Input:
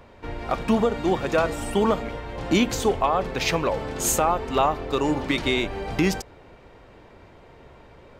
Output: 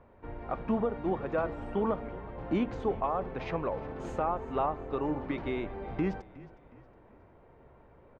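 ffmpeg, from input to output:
ffmpeg -i in.wav -filter_complex "[0:a]lowpass=1500,asplit=4[link_01][link_02][link_03][link_04];[link_02]adelay=364,afreqshift=-31,volume=-19dB[link_05];[link_03]adelay=728,afreqshift=-62,volume=-26.7dB[link_06];[link_04]adelay=1092,afreqshift=-93,volume=-34.5dB[link_07];[link_01][link_05][link_06][link_07]amix=inputs=4:normalize=0,volume=-8.5dB" out.wav

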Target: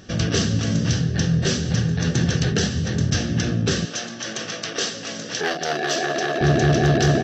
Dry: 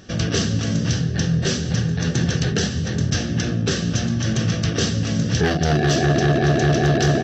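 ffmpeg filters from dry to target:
ffmpeg -i in.wav -filter_complex "[0:a]asettb=1/sr,asplit=3[link_01][link_02][link_03];[link_01]atrim=end=3.854[link_04];[link_02]atrim=start=3.85:end=6.41,asetpts=PTS-STARTPTS,afade=type=in:duration=0.004:curve=qsin,afade=type=out:start_time=2.556:duration=0.004:curve=qsin,highpass=480[link_05];[link_03]atrim=start=6.406[link_06];[link_04][link_05]acrossfade=duration=0.004:curve1=hsin:curve2=qsin[link_07];[link_07][link_06]acrossfade=duration=0.004:curve1=qsin:curve2=hsin" out.wav

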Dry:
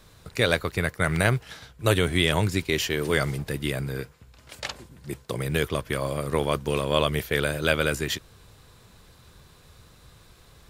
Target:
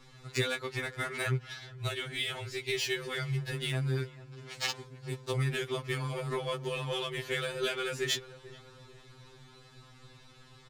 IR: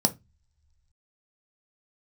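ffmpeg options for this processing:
-filter_complex "[0:a]acompressor=threshold=-27dB:ratio=6,asplit=2[link_01][link_02];[link_02]adelay=438,lowpass=frequency=1800:poles=1,volume=-17dB,asplit=2[link_03][link_04];[link_04]adelay=438,lowpass=frequency=1800:poles=1,volume=0.47,asplit=2[link_05][link_06];[link_06]adelay=438,lowpass=frequency=1800:poles=1,volume=0.47,asplit=2[link_07][link_08];[link_08]adelay=438,lowpass=frequency=1800:poles=1,volume=0.47[link_09];[link_01][link_03][link_05][link_07][link_09]amix=inputs=5:normalize=0,adynamicsmooth=sensitivity=5:basefreq=4300,asettb=1/sr,asplit=3[link_10][link_11][link_12];[link_10]atrim=end=1.374[link_13];[link_11]atrim=start=1.37:end=3.52,asetpts=PTS-STARTPTS,afade=type=in:duration=0.004:curve=qsin,afade=type=out:start_time=2.146:duration=0.004:curve=qsin,equalizer=frequency=125:width_type=o:width=1:gain=3,equalizer=frequency=250:width_type=o:width=1:gain=-11,equalizer=frequency=1000:width_type=o:width=1:gain=-4,equalizer=frequency=8000:width_type=o:width=1:gain=-3[link_14];[link_12]atrim=start=3.516[link_15];[link_13][link_14]acrossfade=duration=0.004:curve1=hsin:curve2=qsin[link_16];[link_16][link_15]acrossfade=duration=0.004:curve1=qsin:curve2=hsin,aeval=exprs='val(0)+0.002*(sin(2*PI*50*n/s)+sin(2*PI*2*50*n/s)/2+sin(2*PI*3*50*n/s)/3+sin(2*PI*4*50*n/s)/4+sin(2*PI*5*50*n/s)/5)':channel_layout=same,highshelf=frequency=3000:gain=9,bandreject=frequency=540:width=12,aecho=1:1:2.3:0.34,afftfilt=real='re*2.45*eq(mod(b,6),0)':imag='im*2.45*eq(mod(b,6),0)':win_size=2048:overlap=0.75"

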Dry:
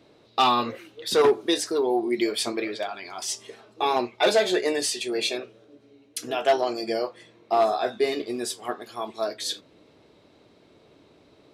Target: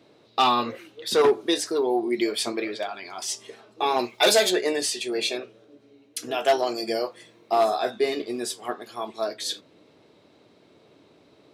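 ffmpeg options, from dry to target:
ffmpeg -i in.wav -filter_complex "[0:a]asplit=3[link_01][link_02][link_03];[link_01]afade=type=out:start_time=3.98:duration=0.02[link_04];[link_02]aemphasis=mode=production:type=75kf,afade=type=in:start_time=3.98:duration=0.02,afade=type=out:start_time=4.49:duration=0.02[link_05];[link_03]afade=type=in:start_time=4.49:duration=0.02[link_06];[link_04][link_05][link_06]amix=inputs=3:normalize=0,highpass=100,asettb=1/sr,asplit=3[link_07][link_08][link_09];[link_07]atrim=end=6.344[link_10];[link_08]atrim=start=6.34:end=7.91,asetpts=PTS-STARTPTS,afade=type=in:duration=0.004:curve=qsin,afade=type=out:start_time=1.566:duration=0.004:curve=qsin,highshelf=frequency=7100:gain=10.5[link_11];[link_09]atrim=start=7.906[link_12];[link_10][link_11]acrossfade=duration=0.004:curve1=hsin:curve2=qsin[link_13];[link_13][link_12]acrossfade=duration=0.004:curve1=qsin:curve2=hsin" out.wav

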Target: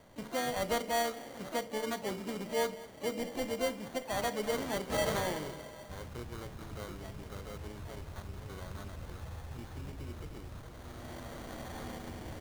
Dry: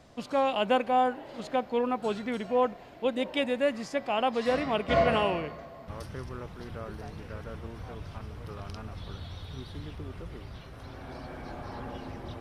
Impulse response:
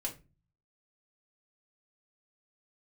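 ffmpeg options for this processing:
-filter_complex "[0:a]lowpass=5900,bandreject=frequency=60:width_type=h:width=6,bandreject=frequency=120:width_type=h:width=6,bandreject=frequency=180:width_type=h:width=6,bandreject=frequency=240:width_type=h:width=6,bandreject=frequency=300:width_type=h:width=6,bandreject=frequency=360:width_type=h:width=6,bandreject=frequency=420:width_type=h:width=6,bandreject=frequency=480:width_type=h:width=6,bandreject=frequency=540:width_type=h:width=6,asplit=2[link_01][link_02];[link_02]acompressor=threshold=-36dB:ratio=12,volume=0dB[link_03];[link_01][link_03]amix=inputs=2:normalize=0,asetrate=40440,aresample=44100,atempo=1.09051,asplit=2[link_04][link_05];[link_05]adelay=201,lowpass=frequency=850:poles=1,volume=-15.5dB,asplit=2[link_06][link_07];[link_07]adelay=201,lowpass=frequency=850:poles=1,volume=0.26,asplit=2[link_08][link_09];[link_09]adelay=201,lowpass=frequency=850:poles=1,volume=0.26[link_10];[link_04][link_06][link_08][link_10]amix=inputs=4:normalize=0,acrusher=samples=17:mix=1:aa=0.000001,asplit=2[link_11][link_12];[1:a]atrim=start_sample=2205,adelay=33[link_13];[link_12][link_13]afir=irnorm=-1:irlink=0,volume=-14.5dB[link_14];[link_11][link_14]amix=inputs=2:normalize=0,asplit=2[link_15][link_16];[link_16]asetrate=58866,aresample=44100,atempo=0.749154,volume=-10dB[link_17];[link_15][link_17]amix=inputs=2:normalize=0,volume=-9dB"

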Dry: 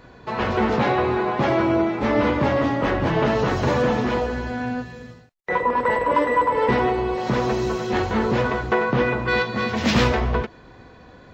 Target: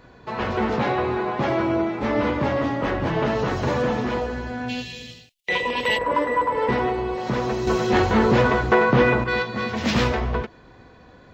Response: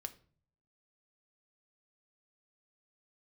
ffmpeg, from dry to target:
-filter_complex "[0:a]asplit=3[link_01][link_02][link_03];[link_01]afade=type=out:start_time=4.68:duration=0.02[link_04];[link_02]highshelf=frequency=2000:width_type=q:width=3:gain=13.5,afade=type=in:start_time=4.68:duration=0.02,afade=type=out:start_time=5.97:duration=0.02[link_05];[link_03]afade=type=in:start_time=5.97:duration=0.02[link_06];[link_04][link_05][link_06]amix=inputs=3:normalize=0,asettb=1/sr,asplit=3[link_07][link_08][link_09];[link_07]atrim=end=7.674[link_10];[link_08]atrim=start=7.67:end=9.24,asetpts=PTS-STARTPTS,afade=type=in:duration=0.004:curve=qsin,afade=type=out:start_time=1.566:duration=0.004:curve=qsin,acontrast=68[link_11];[link_09]atrim=start=9.236[link_12];[link_10][link_11]acrossfade=duration=0.004:curve1=hsin:curve2=qsin[link_13];[link_13][link_12]acrossfade=duration=0.004:curve1=qsin:curve2=hsin,volume=-2.5dB"

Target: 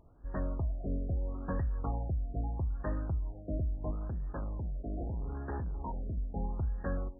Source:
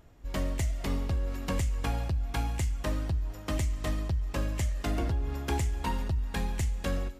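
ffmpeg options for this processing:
ffmpeg -i in.wav -filter_complex "[0:a]asettb=1/sr,asplit=3[link_01][link_02][link_03];[link_01]atrim=end=3.914[link_04];[link_02]atrim=start=3.91:end=6.18,asetpts=PTS-STARTPTS,afade=type=in:duration=0.004:curve=qsin,afade=type=out:start_time=2.266:duration=0.004:curve=qsin,volume=30dB,asoftclip=hard,volume=-30dB[link_05];[link_03]atrim=start=6.176[link_06];[link_04][link_05]acrossfade=duration=0.004:curve1=hsin:curve2=qsin[link_07];[link_07][link_06]acrossfade=duration=0.004:curve1=qsin:curve2=hsin,afftfilt=real='re*lt(b*sr/1024,690*pow(1900/690,0.5+0.5*sin(2*PI*0.77*pts/sr)))':imag='im*lt(b*sr/1024,690*pow(1900/690,0.5+0.5*sin(2*PI*0.77*pts/sr)))':win_size=1024:overlap=0.75,volume=-3.5dB" out.wav

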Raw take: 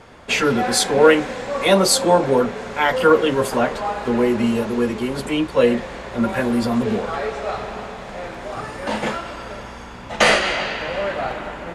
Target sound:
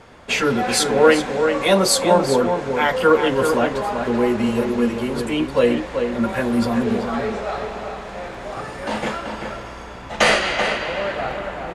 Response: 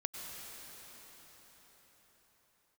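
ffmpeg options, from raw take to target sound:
-filter_complex "[0:a]asplit=2[link_01][link_02];[link_02]adelay=384.8,volume=-6dB,highshelf=frequency=4000:gain=-8.66[link_03];[link_01][link_03]amix=inputs=2:normalize=0,volume=-1dB"

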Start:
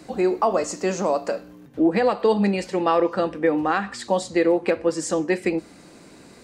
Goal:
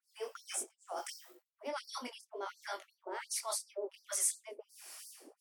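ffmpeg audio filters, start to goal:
ffmpeg -i in.wav -filter_complex "[0:a]acrossover=split=630[link_01][link_02];[link_01]aeval=exprs='val(0)*(1-1/2+1/2*cos(2*PI*1.1*n/s))':channel_layout=same[link_03];[link_02]aeval=exprs='val(0)*(1-1/2-1/2*cos(2*PI*1.1*n/s))':channel_layout=same[link_04];[link_03][link_04]amix=inputs=2:normalize=0,areverse,acompressor=threshold=-32dB:ratio=10,areverse,aemphasis=mode=production:type=75fm,asetrate=52479,aresample=44100,flanger=delay=20:depth=7.1:speed=2.9,afftfilt=real='re*gte(b*sr/1024,230*pow(4300/230,0.5+0.5*sin(2*PI*2.8*pts/sr)))':imag='im*gte(b*sr/1024,230*pow(4300/230,0.5+0.5*sin(2*PI*2.8*pts/sr)))':win_size=1024:overlap=0.75,volume=-1dB" out.wav

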